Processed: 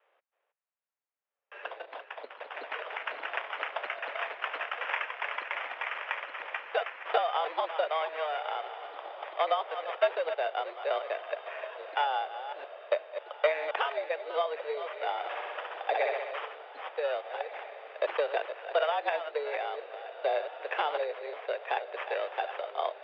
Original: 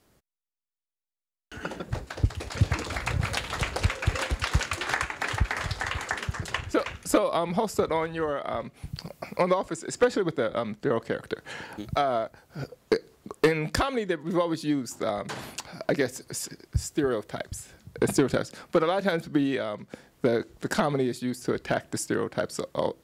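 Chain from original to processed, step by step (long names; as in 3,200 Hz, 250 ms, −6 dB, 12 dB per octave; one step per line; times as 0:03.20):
delay that plays each chunk backwards 261 ms, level −10 dB
decimation without filtering 11×
0:15.18–0:16.31: flutter between parallel walls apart 11 metres, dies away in 1.2 s
single-sideband voice off tune +150 Hz 340–3,200 Hz
on a send: feedback delay with all-pass diffusion 1,605 ms, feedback 41%, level −13.5 dB
on the sum: level −3.5 dB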